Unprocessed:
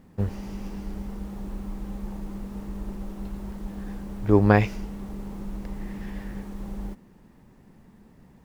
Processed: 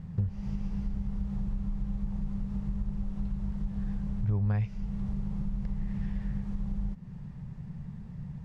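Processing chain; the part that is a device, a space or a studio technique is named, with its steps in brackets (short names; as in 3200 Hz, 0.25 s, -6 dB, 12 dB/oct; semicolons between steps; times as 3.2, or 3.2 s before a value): jukebox (LPF 6300 Hz 12 dB/oct; resonant low shelf 210 Hz +11.5 dB, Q 3; compressor 4:1, threshold -30 dBFS, peak gain reduction 21.5 dB)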